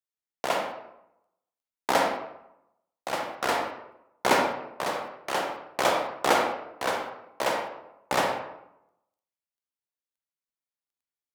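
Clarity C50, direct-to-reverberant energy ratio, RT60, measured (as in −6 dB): 3.5 dB, 2.0 dB, 0.85 s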